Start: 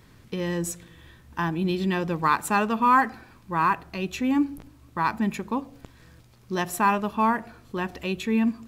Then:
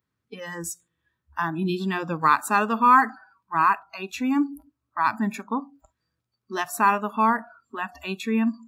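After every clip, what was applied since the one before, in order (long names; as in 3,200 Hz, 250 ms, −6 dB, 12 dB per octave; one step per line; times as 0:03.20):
high-pass filter 69 Hz
noise reduction from a noise print of the clip's start 28 dB
parametric band 1,300 Hz +5.5 dB 0.54 octaves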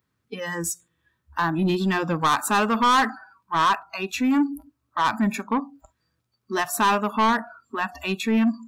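soft clipping −20.5 dBFS, distortion −8 dB
level +5.5 dB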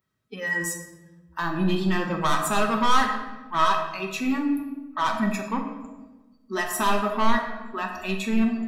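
tuned comb filter 640 Hz, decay 0.15 s, harmonics all, mix 80%
rectangular room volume 720 cubic metres, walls mixed, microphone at 1.1 metres
level +7.5 dB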